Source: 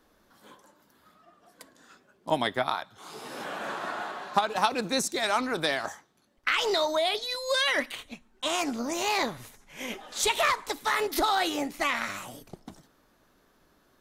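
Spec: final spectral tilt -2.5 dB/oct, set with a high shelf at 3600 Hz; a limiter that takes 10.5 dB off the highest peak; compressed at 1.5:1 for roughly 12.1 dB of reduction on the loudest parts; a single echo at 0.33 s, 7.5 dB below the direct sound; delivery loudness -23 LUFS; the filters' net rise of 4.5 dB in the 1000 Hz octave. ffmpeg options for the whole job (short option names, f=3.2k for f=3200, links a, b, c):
-af "equalizer=f=1k:t=o:g=6,highshelf=f=3.6k:g=-3.5,acompressor=threshold=-49dB:ratio=1.5,alimiter=level_in=4dB:limit=-24dB:level=0:latency=1,volume=-4dB,aecho=1:1:330:0.422,volume=15.5dB"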